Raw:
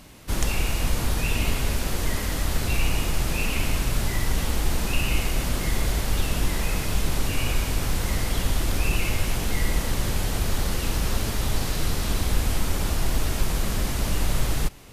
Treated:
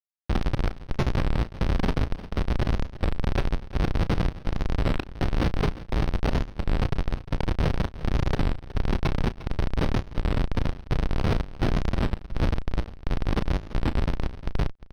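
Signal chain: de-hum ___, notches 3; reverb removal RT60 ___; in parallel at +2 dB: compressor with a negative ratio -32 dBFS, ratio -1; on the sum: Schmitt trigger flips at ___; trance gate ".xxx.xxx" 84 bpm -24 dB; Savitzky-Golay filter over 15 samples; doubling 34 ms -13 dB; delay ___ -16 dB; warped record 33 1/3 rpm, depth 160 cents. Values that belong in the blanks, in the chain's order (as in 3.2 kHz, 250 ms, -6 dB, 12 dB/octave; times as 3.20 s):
112.9 Hz, 1 s, -17 dBFS, 353 ms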